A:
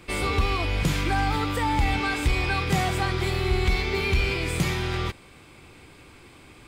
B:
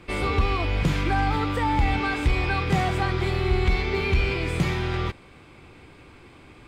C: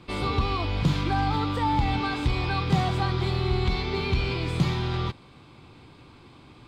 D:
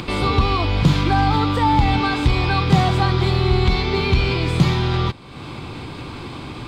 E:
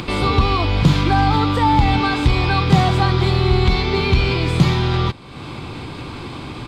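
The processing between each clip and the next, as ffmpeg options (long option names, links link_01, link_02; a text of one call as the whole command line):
ffmpeg -i in.wav -af "lowpass=frequency=2700:poles=1,volume=1.5dB" out.wav
ffmpeg -i in.wav -af "equalizer=frequency=125:width_type=o:width=1:gain=8,equalizer=frequency=250:width_type=o:width=1:gain=5,equalizer=frequency=1000:width_type=o:width=1:gain=7,equalizer=frequency=2000:width_type=o:width=1:gain=-4,equalizer=frequency=4000:width_type=o:width=1:gain=10,volume=-6.5dB" out.wav
ffmpeg -i in.wav -af "acompressor=mode=upward:threshold=-29dB:ratio=2.5,volume=8dB" out.wav
ffmpeg -i in.wav -af "aresample=32000,aresample=44100,volume=1.5dB" out.wav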